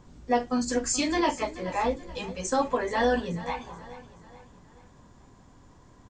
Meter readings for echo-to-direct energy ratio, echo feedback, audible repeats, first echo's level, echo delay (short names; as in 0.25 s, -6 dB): -15.0 dB, 44%, 3, -16.0 dB, 0.429 s